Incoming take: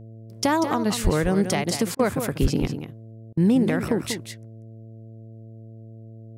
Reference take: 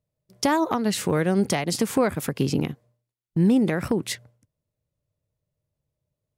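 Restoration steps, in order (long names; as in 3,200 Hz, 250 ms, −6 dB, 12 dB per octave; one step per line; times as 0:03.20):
hum removal 111.9 Hz, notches 6
0:01.03–0:01.15: high-pass filter 140 Hz 24 dB per octave
0:02.41–0:02.53: high-pass filter 140 Hz 24 dB per octave
repair the gap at 0:01.95/0:03.33, 41 ms
echo removal 190 ms −9 dB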